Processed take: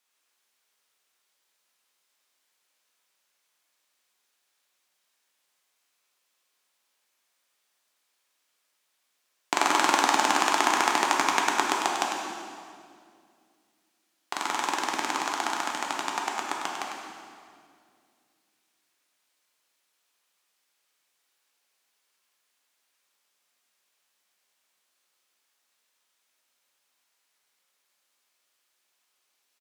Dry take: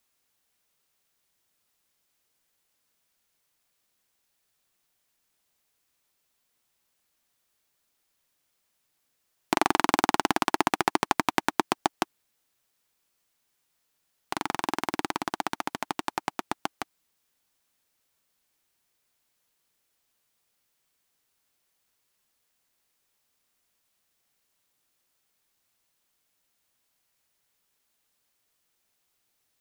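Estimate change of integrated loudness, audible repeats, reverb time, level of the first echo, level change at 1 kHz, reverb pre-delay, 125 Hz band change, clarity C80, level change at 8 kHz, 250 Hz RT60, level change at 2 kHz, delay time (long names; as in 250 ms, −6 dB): +2.5 dB, 1, 2.2 s, −7.5 dB, +3.0 dB, 6 ms, can't be measured, 1.5 dB, +7.0 dB, 2.7 s, +4.0 dB, 100 ms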